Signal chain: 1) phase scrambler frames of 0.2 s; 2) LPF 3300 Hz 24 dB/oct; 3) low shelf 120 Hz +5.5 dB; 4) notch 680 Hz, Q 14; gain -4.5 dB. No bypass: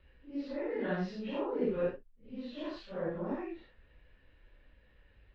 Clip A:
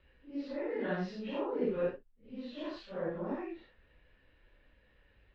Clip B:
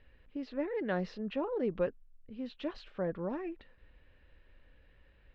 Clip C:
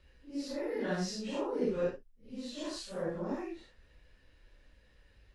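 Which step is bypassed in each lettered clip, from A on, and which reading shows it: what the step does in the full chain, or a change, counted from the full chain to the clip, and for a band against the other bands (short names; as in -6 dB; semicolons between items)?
3, 125 Hz band -1.5 dB; 1, momentary loudness spread change -2 LU; 2, 4 kHz band +7.5 dB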